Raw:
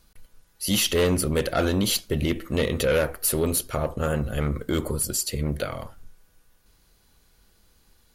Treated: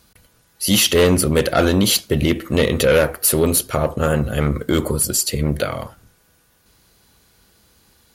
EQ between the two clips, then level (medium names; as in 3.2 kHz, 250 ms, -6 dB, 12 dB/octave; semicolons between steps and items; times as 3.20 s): high-pass 70 Hz; +7.5 dB